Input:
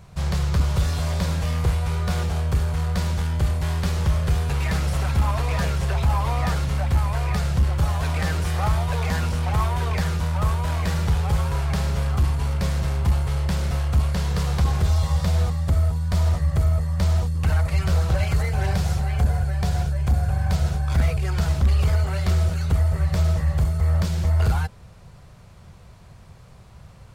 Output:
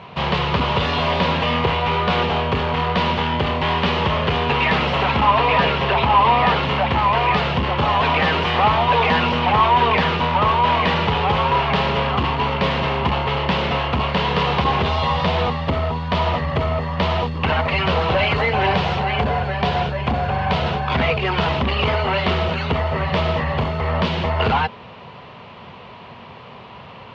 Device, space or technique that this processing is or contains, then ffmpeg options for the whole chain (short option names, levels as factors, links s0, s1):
overdrive pedal into a guitar cabinet: -filter_complex "[0:a]asplit=2[s0][s1];[s1]highpass=f=720:p=1,volume=7.94,asoftclip=type=tanh:threshold=0.251[s2];[s0][s2]amix=inputs=2:normalize=0,lowpass=f=4200:p=1,volume=0.501,highpass=97,equalizer=f=240:t=q:w=4:g=9,equalizer=f=430:t=q:w=4:g=5,equalizer=f=970:t=q:w=4:g=6,equalizer=f=1500:t=q:w=4:g=-5,equalizer=f=2900:t=q:w=4:g=7,lowpass=f=3700:w=0.5412,lowpass=f=3700:w=1.3066,asettb=1/sr,asplit=3[s3][s4][s5];[s3]atrim=end=5.294[s6];[s4]atrim=start=5.29:end=6.63,asetpts=PTS-STARTPTS,afade=t=in:d=0.004:c=qsin,afade=t=out:st=1.336:d=0.004:c=qsin,lowpass=6200[s7];[s5]atrim=start=6.626[s8];[s6][s7]acrossfade=d=0.004:c1=hsin:c2=qsin[s9];[s9][s8]acrossfade=d=0.004:c1=qsin:c2=hsin,volume=1.5"